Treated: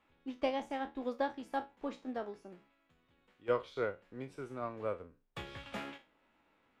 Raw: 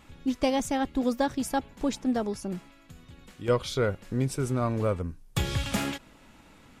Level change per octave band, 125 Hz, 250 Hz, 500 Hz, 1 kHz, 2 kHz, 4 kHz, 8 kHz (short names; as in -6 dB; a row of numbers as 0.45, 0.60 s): -22.0 dB, -14.5 dB, -8.0 dB, -7.5 dB, -8.0 dB, -14.0 dB, under -25 dB